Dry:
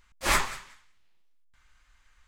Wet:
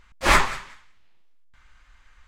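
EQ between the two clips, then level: LPF 3300 Hz 6 dB/oct; +8.5 dB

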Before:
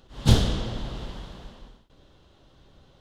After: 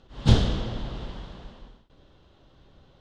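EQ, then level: air absorption 86 m; 0.0 dB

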